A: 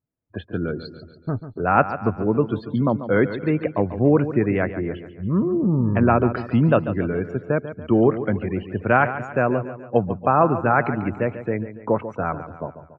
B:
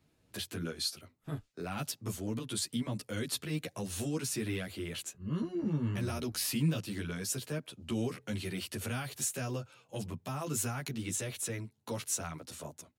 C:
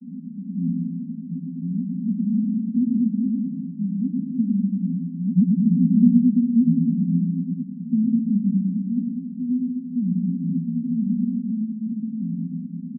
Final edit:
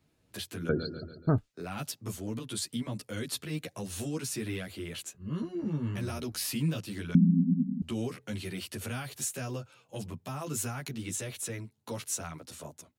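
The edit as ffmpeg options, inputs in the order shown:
ffmpeg -i take0.wav -i take1.wav -i take2.wav -filter_complex "[1:a]asplit=3[link_01][link_02][link_03];[link_01]atrim=end=0.692[link_04];[0:a]atrim=start=0.688:end=1.382[link_05];[link_02]atrim=start=1.378:end=7.152[link_06];[2:a]atrim=start=7.148:end=7.822[link_07];[link_03]atrim=start=7.818[link_08];[link_04][link_05]acrossfade=duration=0.004:curve1=hsin:curve2=hsin[link_09];[link_09][link_06]acrossfade=duration=0.004:curve1=hsin:curve2=hsin[link_10];[link_10][link_07]acrossfade=duration=0.004:curve1=hsin:curve2=hsin[link_11];[link_11][link_08]acrossfade=duration=0.004:curve1=hsin:curve2=hsin" out.wav

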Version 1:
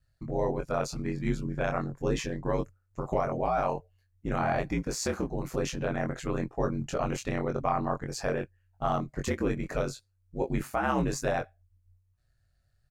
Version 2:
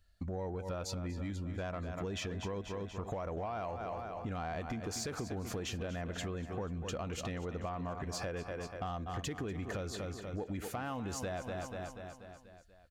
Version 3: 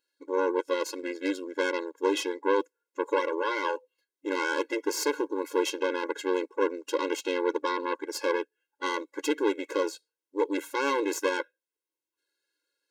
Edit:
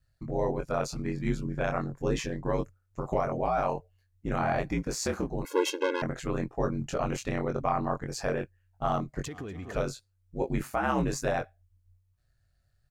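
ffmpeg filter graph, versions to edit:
ffmpeg -i take0.wav -i take1.wav -i take2.wav -filter_complex "[0:a]asplit=3[link_01][link_02][link_03];[link_01]atrim=end=5.452[link_04];[2:a]atrim=start=5.448:end=6.022[link_05];[link_02]atrim=start=6.018:end=9.262[link_06];[1:a]atrim=start=9.258:end=9.762[link_07];[link_03]atrim=start=9.758[link_08];[link_04][link_05]acrossfade=duration=0.004:curve1=hsin:curve2=hsin[link_09];[link_09][link_06]acrossfade=duration=0.004:curve1=hsin:curve2=hsin[link_10];[link_10][link_07]acrossfade=duration=0.004:curve1=hsin:curve2=hsin[link_11];[link_11][link_08]acrossfade=duration=0.004:curve1=hsin:curve2=hsin" out.wav

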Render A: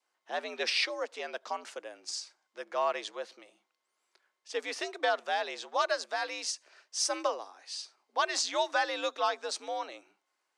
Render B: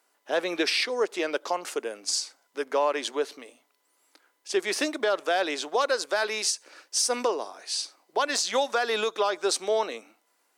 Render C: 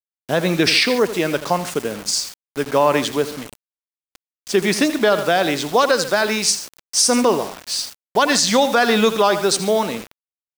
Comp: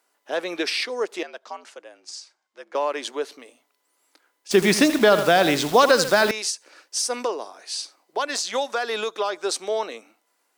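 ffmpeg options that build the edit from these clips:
ffmpeg -i take0.wav -i take1.wav -i take2.wav -filter_complex "[1:a]asplit=3[link_01][link_02][link_03];[link_01]atrim=end=1.232[link_04];[0:a]atrim=start=1.228:end=2.752[link_05];[link_02]atrim=start=2.748:end=4.512[link_06];[2:a]atrim=start=4.508:end=6.312[link_07];[link_03]atrim=start=6.308[link_08];[link_04][link_05]acrossfade=duration=0.004:curve1=hsin:curve2=hsin[link_09];[link_09][link_06]acrossfade=duration=0.004:curve1=hsin:curve2=hsin[link_10];[link_10][link_07]acrossfade=duration=0.004:curve1=hsin:curve2=hsin[link_11];[link_11][link_08]acrossfade=duration=0.004:curve1=hsin:curve2=hsin" out.wav

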